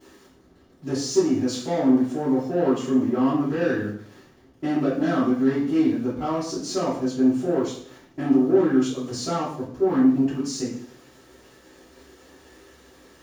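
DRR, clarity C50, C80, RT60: -14.0 dB, 4.5 dB, 8.0 dB, 0.60 s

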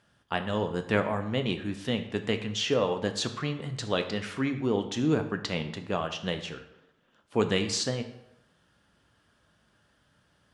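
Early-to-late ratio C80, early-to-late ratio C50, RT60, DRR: 12.5 dB, 10.5 dB, 0.85 s, 6.5 dB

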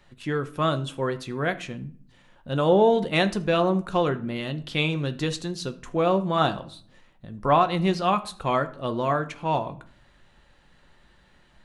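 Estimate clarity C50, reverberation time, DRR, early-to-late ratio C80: 16.5 dB, 0.55 s, 8.5 dB, 20.0 dB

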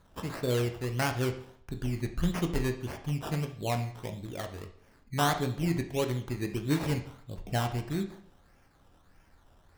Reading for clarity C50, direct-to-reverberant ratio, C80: 10.5 dB, 5.0 dB, 13.5 dB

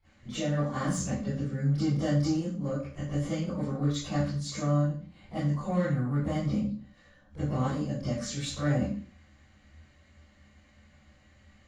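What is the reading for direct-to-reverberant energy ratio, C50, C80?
-20.5 dB, -5.5 dB, 3.5 dB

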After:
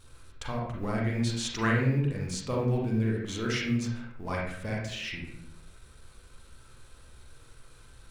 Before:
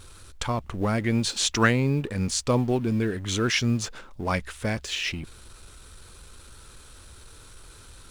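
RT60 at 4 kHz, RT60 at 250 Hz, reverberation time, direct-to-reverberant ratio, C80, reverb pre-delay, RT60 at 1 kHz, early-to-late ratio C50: 0.50 s, 0.85 s, 0.65 s, -3.0 dB, 6.0 dB, 38 ms, 0.55 s, 1.5 dB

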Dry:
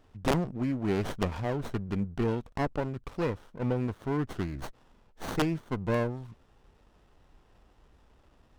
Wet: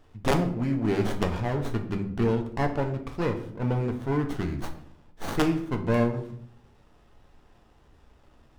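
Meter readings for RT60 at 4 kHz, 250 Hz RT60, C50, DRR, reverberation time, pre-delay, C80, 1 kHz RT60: 0.45 s, 0.90 s, 10.5 dB, 4.0 dB, 0.65 s, 7 ms, 13.0 dB, 0.55 s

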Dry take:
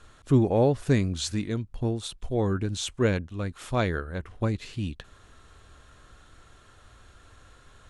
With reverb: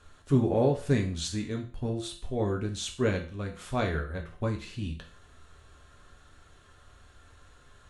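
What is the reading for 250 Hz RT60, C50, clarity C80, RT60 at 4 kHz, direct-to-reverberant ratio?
0.40 s, 9.5 dB, 14.5 dB, 0.40 s, 1.5 dB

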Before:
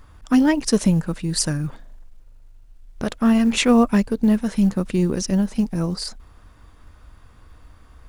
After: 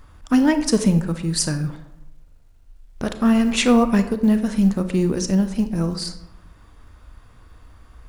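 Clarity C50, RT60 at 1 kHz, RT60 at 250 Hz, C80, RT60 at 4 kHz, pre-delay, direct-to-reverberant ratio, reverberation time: 11.0 dB, 0.75 s, 0.95 s, 13.5 dB, 0.50 s, 28 ms, 9.0 dB, 0.80 s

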